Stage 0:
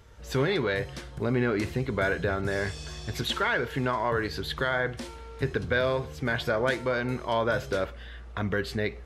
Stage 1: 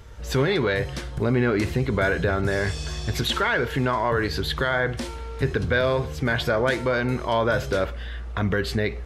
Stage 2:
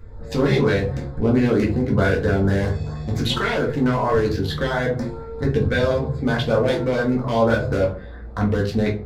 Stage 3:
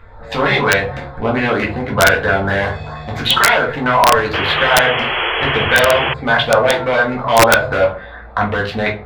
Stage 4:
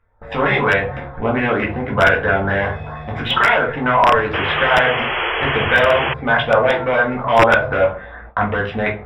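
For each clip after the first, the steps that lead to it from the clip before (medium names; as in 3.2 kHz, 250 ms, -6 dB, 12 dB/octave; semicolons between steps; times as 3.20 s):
bass shelf 75 Hz +6 dB; in parallel at +1 dB: peak limiter -23 dBFS, peak gain reduction 9.5 dB
local Wiener filter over 15 samples; LFO notch saw up 4.4 Hz 700–3000 Hz; simulated room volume 180 m³, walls furnished, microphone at 2 m
high-order bell 1.5 kHz +15.5 dB 3 oct; painted sound noise, 4.33–6.14 s, 330–3400 Hz -16 dBFS; integer overflow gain -1.5 dB; trim -2.5 dB
Savitzky-Golay filter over 25 samples; gate with hold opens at -26 dBFS; trim -1.5 dB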